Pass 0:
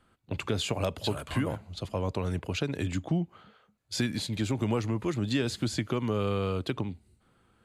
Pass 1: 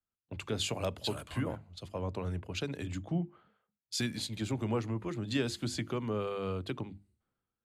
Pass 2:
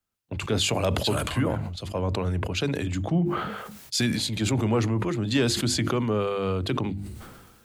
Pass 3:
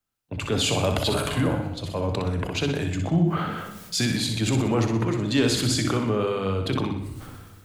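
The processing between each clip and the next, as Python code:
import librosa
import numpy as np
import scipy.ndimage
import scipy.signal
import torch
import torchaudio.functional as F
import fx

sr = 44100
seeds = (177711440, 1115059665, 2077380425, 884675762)

y1 = fx.hum_notches(x, sr, base_hz=50, count=7)
y1 = fx.band_widen(y1, sr, depth_pct=70)
y1 = y1 * librosa.db_to_amplitude(-4.5)
y2 = 10.0 ** (-20.5 / 20.0) * np.tanh(y1 / 10.0 ** (-20.5 / 20.0))
y2 = fx.sustainer(y2, sr, db_per_s=40.0)
y2 = y2 * librosa.db_to_amplitude(9.0)
y3 = fx.echo_feedback(y2, sr, ms=62, feedback_pct=49, wet_db=-6.5)
y3 = fx.room_shoebox(y3, sr, seeds[0], volume_m3=430.0, walls='mixed', distance_m=0.38)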